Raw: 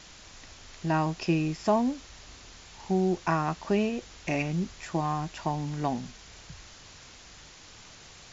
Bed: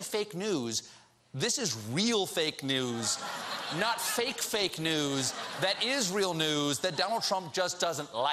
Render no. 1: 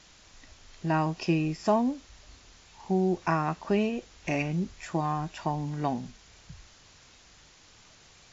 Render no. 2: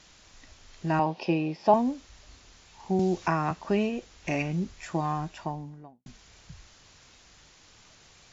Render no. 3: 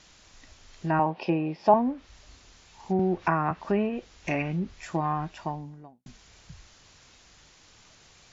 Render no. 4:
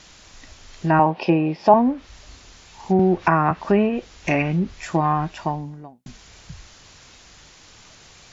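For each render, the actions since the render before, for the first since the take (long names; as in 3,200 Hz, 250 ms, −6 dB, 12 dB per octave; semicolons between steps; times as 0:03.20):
noise reduction from a noise print 6 dB
0:00.99–0:01.74: loudspeaker in its box 170–4,700 Hz, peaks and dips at 540 Hz +8 dB, 860 Hz +9 dB, 1,300 Hz −7 dB, 1,900 Hz −4 dB; 0:02.99–0:03.51: multiband upward and downward compressor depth 70%; 0:05.15–0:06.06: fade out and dull
treble cut that deepens with the level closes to 1,800 Hz, closed at −23 dBFS; dynamic equaliser 1,600 Hz, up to +4 dB, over −39 dBFS, Q 0.75
level +8 dB; brickwall limiter −3 dBFS, peak gain reduction 3 dB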